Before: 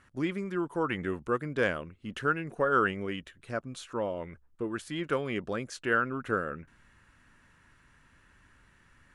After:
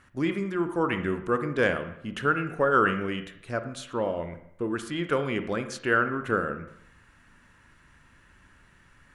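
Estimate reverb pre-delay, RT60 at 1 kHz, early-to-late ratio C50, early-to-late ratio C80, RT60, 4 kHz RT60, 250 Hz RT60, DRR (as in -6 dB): 36 ms, 0.75 s, 10.5 dB, 13.0 dB, 0.75 s, 0.65 s, 0.70 s, 8.5 dB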